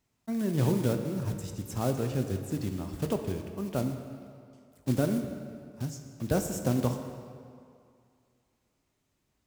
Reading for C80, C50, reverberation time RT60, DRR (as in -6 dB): 7.5 dB, 7.0 dB, 2.3 s, 5.5 dB